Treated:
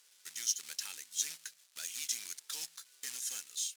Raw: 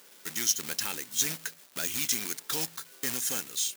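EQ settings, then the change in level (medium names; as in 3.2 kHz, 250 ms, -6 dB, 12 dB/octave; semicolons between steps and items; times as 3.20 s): distance through air 66 m; pre-emphasis filter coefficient 0.97; 0.0 dB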